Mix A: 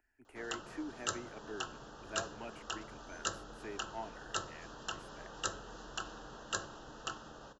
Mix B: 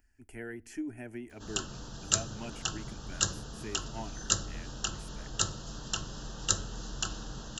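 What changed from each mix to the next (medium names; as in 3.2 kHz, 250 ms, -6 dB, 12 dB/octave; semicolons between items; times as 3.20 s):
background: entry +1.05 s; master: remove three-band isolator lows -15 dB, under 320 Hz, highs -13 dB, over 2.5 kHz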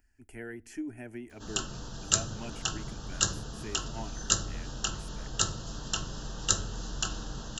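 background: send +6.5 dB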